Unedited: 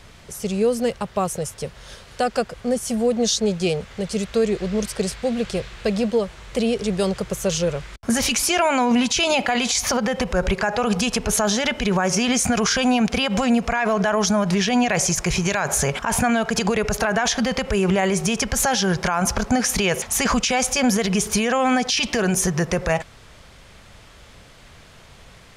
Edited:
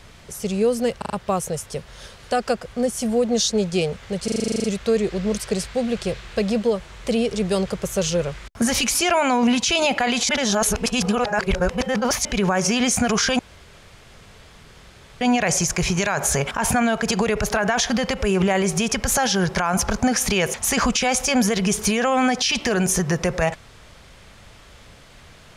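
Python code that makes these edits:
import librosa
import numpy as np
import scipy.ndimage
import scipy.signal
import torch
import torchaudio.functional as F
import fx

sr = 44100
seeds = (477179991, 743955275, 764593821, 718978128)

y = fx.edit(x, sr, fx.stutter(start_s=0.98, slice_s=0.04, count=4),
    fx.stutter(start_s=4.12, slice_s=0.04, count=11),
    fx.reverse_span(start_s=9.77, length_s=1.96),
    fx.room_tone_fill(start_s=12.87, length_s=1.82), tone=tone)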